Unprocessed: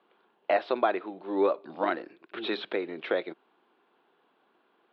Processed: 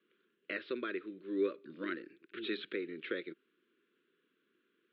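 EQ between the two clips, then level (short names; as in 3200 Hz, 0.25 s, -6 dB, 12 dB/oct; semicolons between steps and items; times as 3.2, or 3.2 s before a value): Chebyshev band-stop 390–1600 Hz, order 2; LPF 4400 Hz 24 dB/oct; low shelf 66 Hz +10.5 dB; -5.5 dB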